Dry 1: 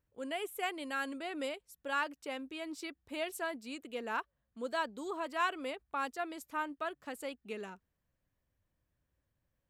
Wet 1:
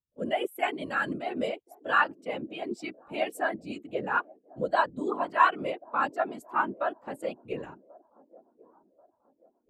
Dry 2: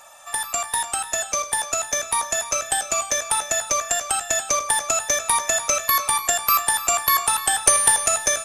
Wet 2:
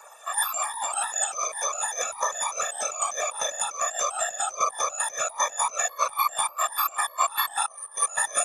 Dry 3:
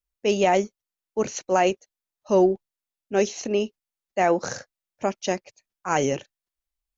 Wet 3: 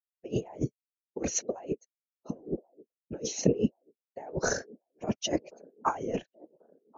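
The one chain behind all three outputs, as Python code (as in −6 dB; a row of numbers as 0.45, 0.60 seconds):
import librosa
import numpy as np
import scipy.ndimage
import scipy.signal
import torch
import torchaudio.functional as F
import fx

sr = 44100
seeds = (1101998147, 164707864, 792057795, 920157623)

y = fx.diode_clip(x, sr, knee_db=-6.0)
y = scipy.signal.sosfilt(scipy.signal.butter(2, 67.0, 'highpass', fs=sr, output='sos'), y)
y = fx.over_compress(y, sr, threshold_db=-28.0, ratio=-0.5)
y = fx.whisperise(y, sr, seeds[0])
y = fx.echo_wet_bandpass(y, sr, ms=1086, feedback_pct=53, hz=430.0, wet_db=-15.0)
y = fx.spectral_expand(y, sr, expansion=1.5)
y = librosa.util.normalize(y) * 10.0 ** (-9 / 20.0)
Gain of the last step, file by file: +12.0, +2.0, 0.0 decibels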